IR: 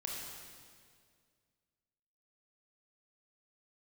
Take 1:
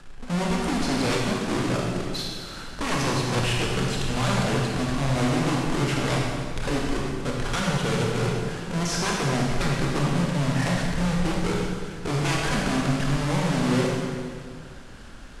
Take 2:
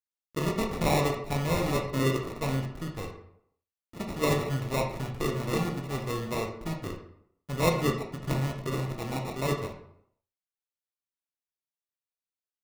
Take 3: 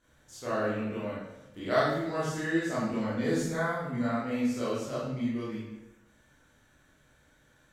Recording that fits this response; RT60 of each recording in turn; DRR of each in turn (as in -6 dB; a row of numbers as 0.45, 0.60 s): 1; 2.1, 0.70, 0.95 s; -2.5, 2.0, -10.0 dB